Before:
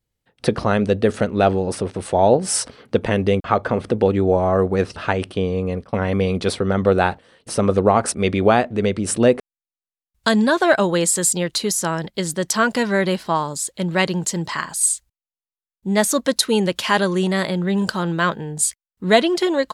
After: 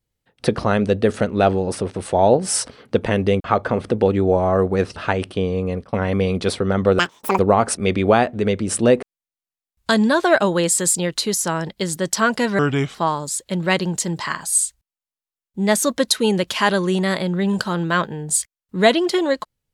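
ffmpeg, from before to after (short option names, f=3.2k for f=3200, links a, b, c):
-filter_complex "[0:a]asplit=5[a][b][c][d][e];[a]atrim=end=6.994[f];[b]atrim=start=6.99:end=7.76,asetpts=PTS-STARTPTS,asetrate=85554,aresample=44100[g];[c]atrim=start=7.756:end=12.964[h];[d]atrim=start=12.96:end=13.23,asetpts=PTS-STARTPTS,asetrate=33075,aresample=44100[i];[e]atrim=start=13.226[j];[f][g]acrossfade=d=0.004:c1=hsin:c2=hsin[k];[k][h]acrossfade=d=0.004:c1=hsin:c2=hsin[l];[l][i]acrossfade=d=0.004:c1=hsin:c2=hsin[m];[m][j]acrossfade=d=0.004:c1=hsin:c2=hsin"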